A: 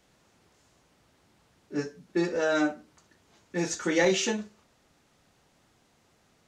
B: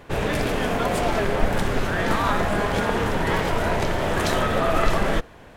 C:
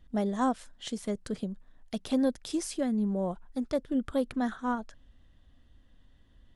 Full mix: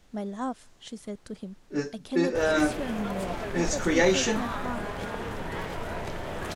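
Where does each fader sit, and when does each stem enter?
+1.5, −11.5, −4.5 decibels; 0.00, 2.25, 0.00 seconds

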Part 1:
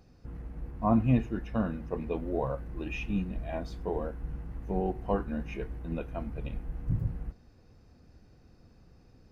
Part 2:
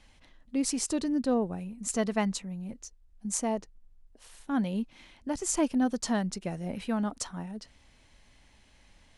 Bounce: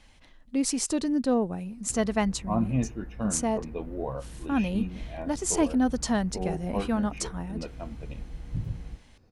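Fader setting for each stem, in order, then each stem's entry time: −2.0, +2.5 decibels; 1.65, 0.00 seconds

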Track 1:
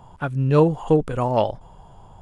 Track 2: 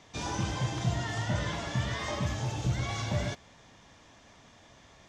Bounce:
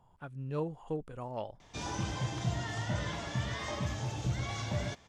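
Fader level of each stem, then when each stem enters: −19.0, −3.5 decibels; 0.00, 1.60 seconds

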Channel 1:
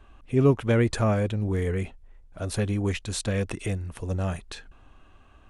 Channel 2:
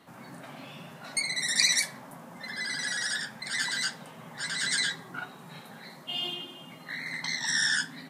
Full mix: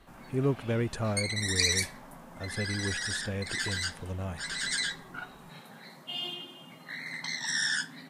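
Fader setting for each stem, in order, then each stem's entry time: −8.0, −3.0 decibels; 0.00, 0.00 seconds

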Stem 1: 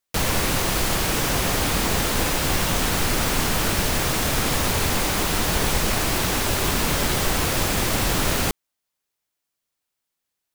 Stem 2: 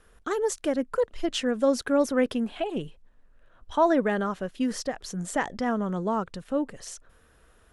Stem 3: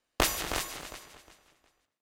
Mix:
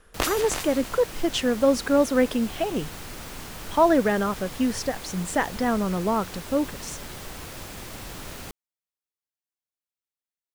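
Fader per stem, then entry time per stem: −16.5, +3.0, 0.0 decibels; 0.00, 0.00, 0.00 seconds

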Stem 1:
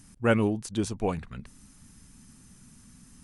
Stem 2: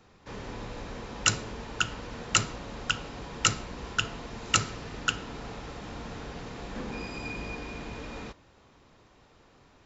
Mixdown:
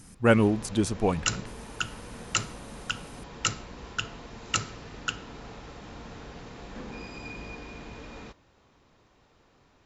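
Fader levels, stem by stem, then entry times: +3.0, −3.5 decibels; 0.00, 0.00 seconds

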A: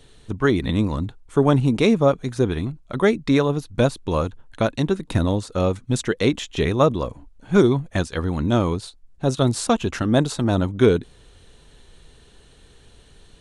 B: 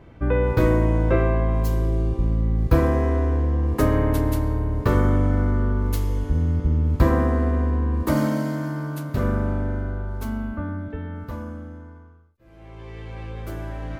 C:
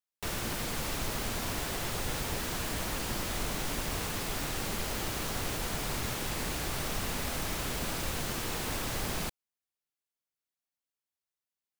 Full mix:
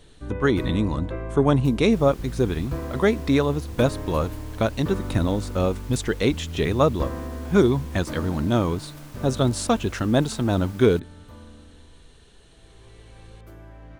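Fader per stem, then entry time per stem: −2.0, −12.5, −13.5 decibels; 0.00, 0.00, 1.70 seconds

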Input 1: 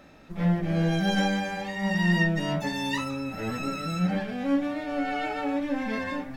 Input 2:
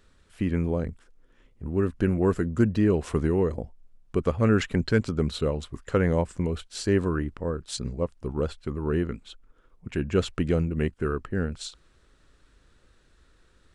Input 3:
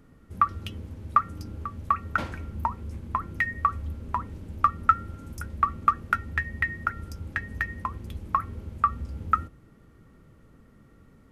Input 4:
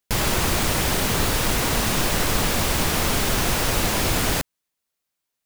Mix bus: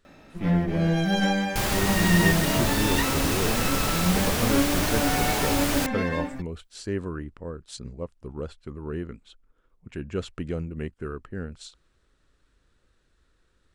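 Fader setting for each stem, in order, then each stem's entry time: +1.5 dB, −6.5 dB, muted, −4.5 dB; 0.05 s, 0.00 s, muted, 1.45 s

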